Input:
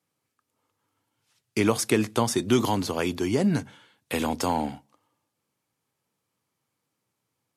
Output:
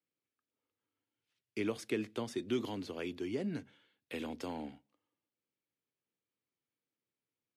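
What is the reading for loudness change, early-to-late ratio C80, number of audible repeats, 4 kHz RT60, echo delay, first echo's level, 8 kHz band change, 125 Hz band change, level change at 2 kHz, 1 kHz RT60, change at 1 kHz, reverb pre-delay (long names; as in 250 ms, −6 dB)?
−13.5 dB, no reverb audible, no echo audible, no reverb audible, no echo audible, no echo audible, −22.0 dB, −17.0 dB, −13.0 dB, no reverb audible, −19.5 dB, no reverb audible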